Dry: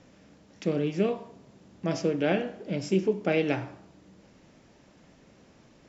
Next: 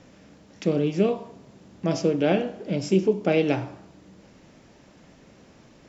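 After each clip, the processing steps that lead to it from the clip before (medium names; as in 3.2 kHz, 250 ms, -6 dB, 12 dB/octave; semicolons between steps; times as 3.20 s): dynamic bell 1.8 kHz, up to -6 dB, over -49 dBFS, Q 1.7; trim +4.5 dB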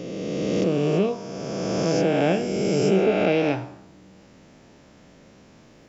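reverse spectral sustain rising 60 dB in 2.75 s; trim -2.5 dB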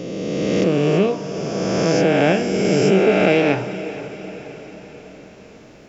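dynamic bell 1.9 kHz, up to +5 dB, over -41 dBFS, Q 1.4; echo that smears into a reverb 468 ms, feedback 56%, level -14 dB; trim +4.5 dB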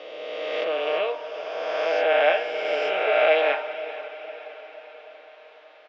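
elliptic band-pass 590–3600 Hz, stop band 80 dB; comb 6.5 ms, depth 52%; trim -1.5 dB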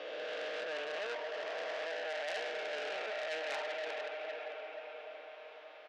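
reverse; compression 20:1, threshold -29 dBFS, peak gain reduction 15.5 dB; reverse; transformer saturation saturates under 3.4 kHz; trim -2.5 dB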